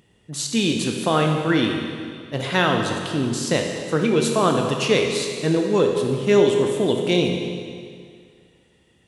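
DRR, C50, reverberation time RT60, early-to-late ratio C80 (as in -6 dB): 2.0 dB, 3.5 dB, 2.1 s, 4.5 dB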